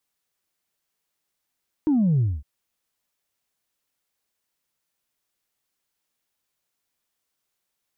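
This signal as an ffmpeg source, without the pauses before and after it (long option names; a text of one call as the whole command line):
ffmpeg -f lavfi -i "aevalsrc='0.141*clip((0.56-t)/0.23,0,1)*tanh(1*sin(2*PI*320*0.56/log(65/320)*(exp(log(65/320)*t/0.56)-1)))/tanh(1)':duration=0.56:sample_rate=44100" out.wav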